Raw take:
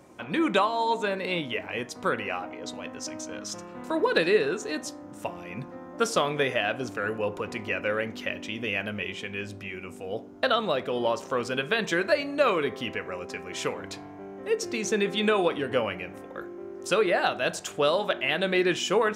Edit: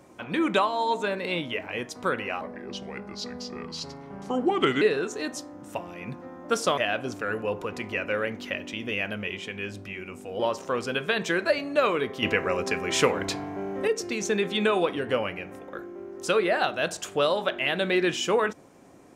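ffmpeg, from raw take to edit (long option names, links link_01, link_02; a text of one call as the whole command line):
ffmpeg -i in.wav -filter_complex "[0:a]asplit=7[link_01][link_02][link_03][link_04][link_05][link_06][link_07];[link_01]atrim=end=2.414[link_08];[link_02]atrim=start=2.41:end=4.31,asetpts=PTS-STARTPTS,asetrate=34839,aresample=44100,atrim=end_sample=106063,asetpts=PTS-STARTPTS[link_09];[link_03]atrim=start=4.306:end=6.272[link_10];[link_04]atrim=start=6.528:end=10.152[link_11];[link_05]atrim=start=11.018:end=12.852[link_12];[link_06]atrim=start=12.848:end=14.502,asetpts=PTS-STARTPTS,volume=8.5dB[link_13];[link_07]atrim=start=14.498[link_14];[link_08][link_09]acrossfade=duration=0.004:curve1=hsin:curve2=hsin[link_15];[link_15][link_10]acrossfade=duration=0.004:curve1=hsin:curve2=hsin[link_16];[link_16][link_11]acrossfade=duration=0.004:curve1=hsin:curve2=hsin[link_17];[link_17][link_12]acrossfade=duration=0.004:curve1=hsin:curve2=hsin[link_18];[link_18][link_13]acrossfade=duration=0.004:curve1=hsin:curve2=hsin[link_19];[link_19][link_14]acrossfade=duration=0.004:curve1=hsin:curve2=hsin" out.wav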